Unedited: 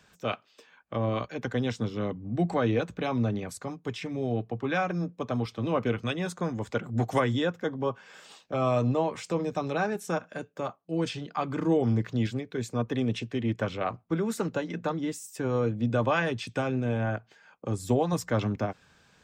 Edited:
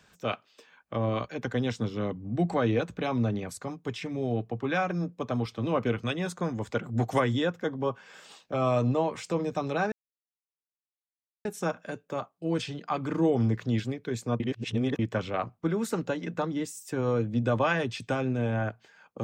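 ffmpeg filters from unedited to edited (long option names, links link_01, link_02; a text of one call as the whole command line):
ffmpeg -i in.wav -filter_complex "[0:a]asplit=4[link_01][link_02][link_03][link_04];[link_01]atrim=end=9.92,asetpts=PTS-STARTPTS,afade=type=out:start_time=9.916:duration=0.004:curve=hsin,apad=pad_dur=1.53[link_05];[link_02]atrim=start=9.92:end=12.872,asetpts=PTS-STARTPTS,afade=type=in:duration=0.004:curve=hsin[link_06];[link_03]atrim=start=12.868:end=13.462,asetpts=PTS-STARTPTS,areverse[link_07];[link_04]atrim=start=13.458[link_08];[link_05][link_06]concat=n=2:v=0:a=1[link_09];[link_09][link_07]acrossfade=duration=0.004:curve1=hsin:curve2=hsin[link_10];[link_10][link_08]acrossfade=duration=0.004:curve1=hsin:curve2=hsin" out.wav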